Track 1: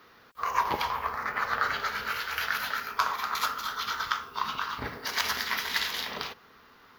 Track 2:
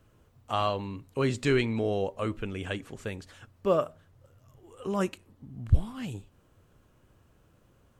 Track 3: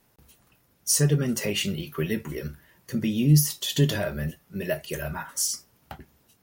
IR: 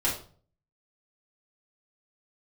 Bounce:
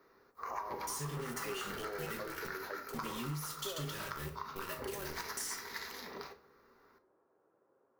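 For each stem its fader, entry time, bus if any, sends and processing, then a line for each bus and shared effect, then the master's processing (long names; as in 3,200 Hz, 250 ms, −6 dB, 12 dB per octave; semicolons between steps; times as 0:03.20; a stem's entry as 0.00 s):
−12.5 dB, 0.00 s, send −16 dB, parametric band 3,100 Hz −14.5 dB 0.52 octaves
−3.5 dB, 0.00 s, send −15.5 dB, Gaussian smoothing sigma 6.2 samples; downward compressor, threshold −36 dBFS, peak gain reduction 19.5 dB; high-pass filter 580 Hz 12 dB per octave
−3.5 dB, 0.00 s, send −10.5 dB, guitar amp tone stack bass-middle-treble 5-5-5; brickwall limiter −27 dBFS, peak gain reduction 10 dB; bit reduction 7 bits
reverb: on, RT60 0.45 s, pre-delay 4 ms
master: parametric band 390 Hz +10 dB 0.45 octaves; downward compressor 10 to 1, threshold −36 dBFS, peak gain reduction 10 dB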